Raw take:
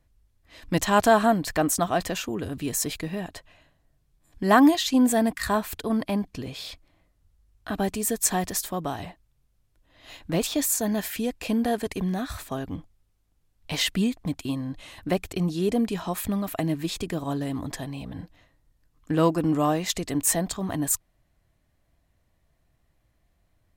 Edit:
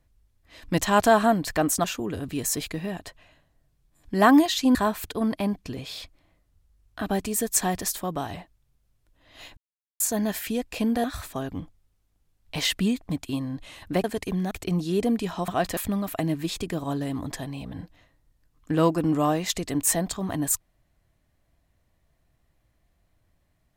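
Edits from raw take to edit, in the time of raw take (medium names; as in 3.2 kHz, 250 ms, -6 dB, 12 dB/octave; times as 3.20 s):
1.84–2.13 s: move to 16.17 s
5.04–5.44 s: delete
10.26–10.69 s: mute
11.73–12.20 s: move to 15.20 s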